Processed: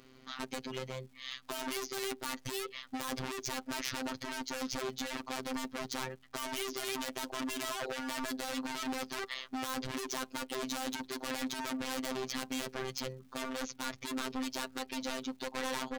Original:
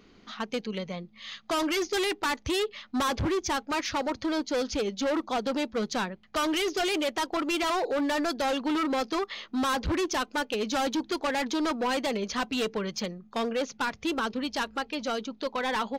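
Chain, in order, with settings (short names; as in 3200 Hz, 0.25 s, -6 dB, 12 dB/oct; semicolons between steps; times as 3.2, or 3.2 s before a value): wavefolder -29.5 dBFS; robotiser 130 Hz; crackle 450/s -59 dBFS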